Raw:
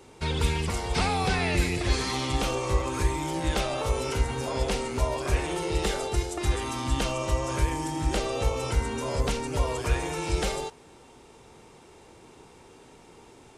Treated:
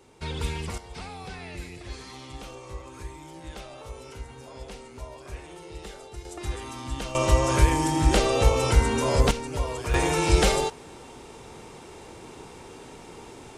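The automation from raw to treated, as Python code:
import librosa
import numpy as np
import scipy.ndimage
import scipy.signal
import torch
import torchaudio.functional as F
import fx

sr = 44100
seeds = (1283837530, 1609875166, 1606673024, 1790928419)

y = fx.gain(x, sr, db=fx.steps((0.0, -4.5), (0.78, -13.5), (6.25, -6.0), (7.15, 6.5), (9.31, -2.0), (9.94, 7.5)))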